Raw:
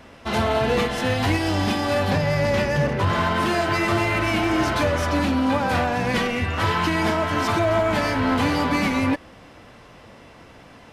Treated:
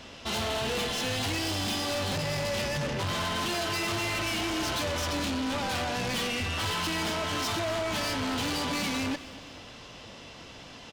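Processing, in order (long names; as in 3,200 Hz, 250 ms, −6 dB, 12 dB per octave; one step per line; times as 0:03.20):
flat-topped bell 4,500 Hz +10 dB
soft clipping −26.5 dBFS, distortion −7 dB
on a send: repeating echo 238 ms, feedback 44%, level −17 dB
on the sum: level −2 dB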